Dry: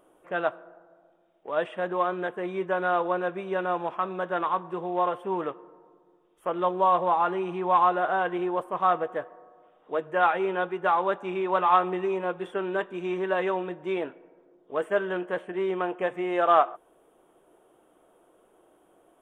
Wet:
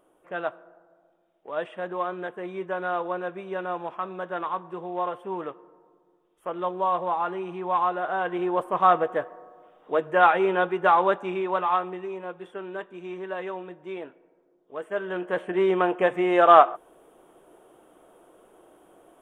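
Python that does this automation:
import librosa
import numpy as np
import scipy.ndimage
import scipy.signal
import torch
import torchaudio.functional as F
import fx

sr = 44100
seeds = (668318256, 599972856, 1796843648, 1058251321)

y = fx.gain(x, sr, db=fx.line((8.04, -3.0), (8.69, 4.5), (11.06, 4.5), (12.01, -6.5), (14.82, -6.5), (15.52, 6.0)))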